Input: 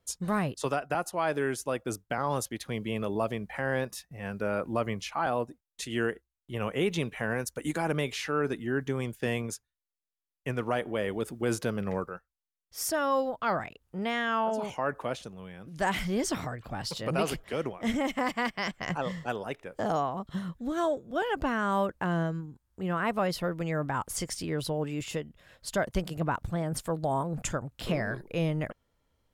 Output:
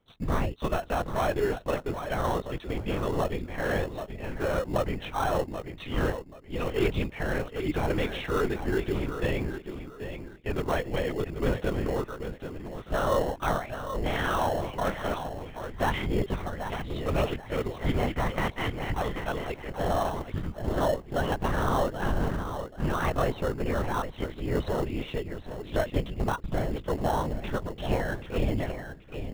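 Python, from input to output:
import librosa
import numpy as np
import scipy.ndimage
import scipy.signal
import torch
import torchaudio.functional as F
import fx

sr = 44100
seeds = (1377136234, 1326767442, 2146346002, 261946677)

p1 = fx.echo_feedback(x, sr, ms=783, feedback_pct=25, wet_db=-9.0)
p2 = fx.lpc_vocoder(p1, sr, seeds[0], excitation='whisper', order=10)
p3 = fx.sample_hold(p2, sr, seeds[1], rate_hz=2400.0, jitter_pct=0)
y = p2 + (p3 * librosa.db_to_amplitude(-9.0))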